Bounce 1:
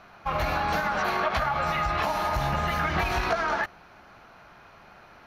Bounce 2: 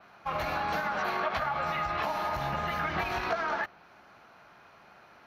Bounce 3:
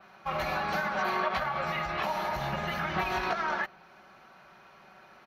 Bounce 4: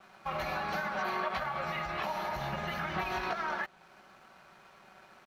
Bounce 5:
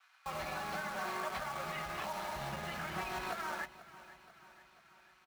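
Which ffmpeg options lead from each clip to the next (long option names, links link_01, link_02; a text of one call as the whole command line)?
ffmpeg -i in.wav -af "highpass=frequency=150:poles=1,adynamicequalizer=threshold=0.00158:dfrequency=8600:dqfactor=0.97:tfrequency=8600:tqfactor=0.97:attack=5:release=100:ratio=0.375:range=4:mode=cutabove:tftype=bell,volume=-4dB" out.wav
ffmpeg -i in.wav -af "aecho=1:1:5.3:0.51" out.wav
ffmpeg -i in.wav -filter_complex "[0:a]asplit=2[link_01][link_02];[link_02]acompressor=threshold=-38dB:ratio=6,volume=2dB[link_03];[link_01][link_03]amix=inputs=2:normalize=0,aeval=exprs='sgn(val(0))*max(abs(val(0))-0.00158,0)':channel_layout=same,volume=-6.5dB" out.wav
ffmpeg -i in.wav -filter_complex "[0:a]acrossover=split=1100[link_01][link_02];[link_01]acrusher=bits=6:mix=0:aa=0.000001[link_03];[link_03][link_02]amix=inputs=2:normalize=0,aecho=1:1:487|974|1461|1948|2435:0.141|0.0791|0.0443|0.0248|0.0139,volume=-5.5dB" out.wav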